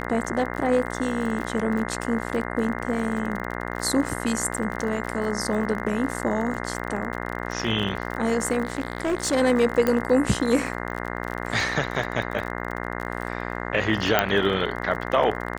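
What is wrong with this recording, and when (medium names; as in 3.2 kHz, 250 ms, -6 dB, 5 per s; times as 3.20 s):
buzz 60 Hz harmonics 35 -31 dBFS
crackle 38 per s -30 dBFS
8.63–9.34 s: clipped -20 dBFS
9.87 s: pop -10 dBFS
14.19 s: pop -4 dBFS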